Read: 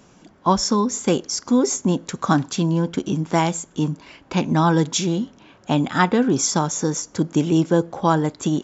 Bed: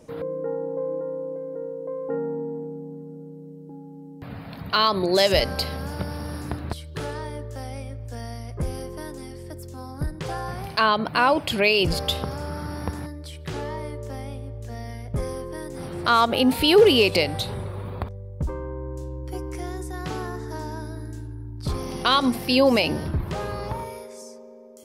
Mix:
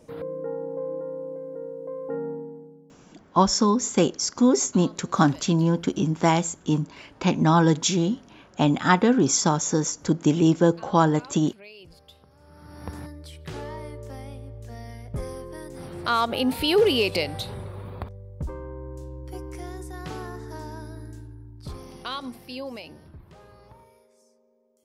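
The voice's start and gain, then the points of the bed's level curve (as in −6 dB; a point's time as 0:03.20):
2.90 s, −1.0 dB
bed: 0:02.30 −3 dB
0:03.27 −27 dB
0:12.29 −27 dB
0:12.95 −4.5 dB
0:21.07 −4.5 dB
0:22.98 −20.5 dB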